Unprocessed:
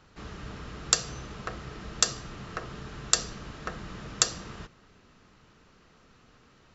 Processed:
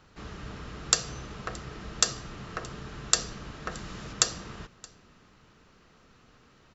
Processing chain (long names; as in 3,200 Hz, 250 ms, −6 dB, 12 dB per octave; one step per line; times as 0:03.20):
0:03.71–0:04.13: high-shelf EQ 4,600 Hz +8.5 dB
single-tap delay 623 ms −24 dB